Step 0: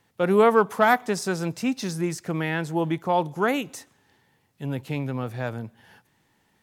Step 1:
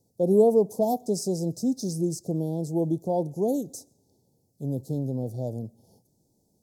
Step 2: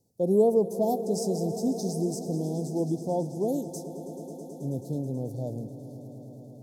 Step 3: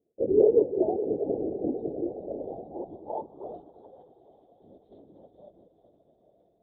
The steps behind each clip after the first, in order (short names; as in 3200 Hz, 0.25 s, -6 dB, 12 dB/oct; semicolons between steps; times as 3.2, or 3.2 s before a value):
inverse Chebyshev band-stop 1300–2600 Hz, stop band 60 dB
swelling echo 0.108 s, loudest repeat 5, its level -17 dB; gain -2.5 dB
split-band echo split 300 Hz, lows 0.22 s, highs 0.418 s, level -11 dB; LPC vocoder at 8 kHz whisper; band-pass sweep 410 Hz -> 2000 Hz, 1.81–4.2; gain +3 dB